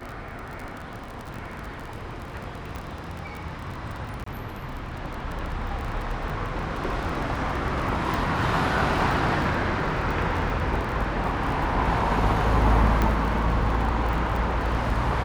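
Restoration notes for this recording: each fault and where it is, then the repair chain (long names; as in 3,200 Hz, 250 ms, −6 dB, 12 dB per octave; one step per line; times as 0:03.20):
surface crackle 28 per second −30 dBFS
0:02.76: click −20 dBFS
0:04.24–0:04.26: drop-out 24 ms
0:08.14: click
0:13.02: click −11 dBFS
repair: click removal
repair the gap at 0:04.24, 24 ms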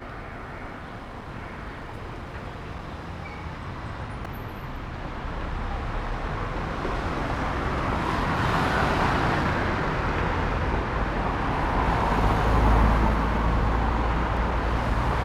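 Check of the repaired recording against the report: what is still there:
0:02.76: click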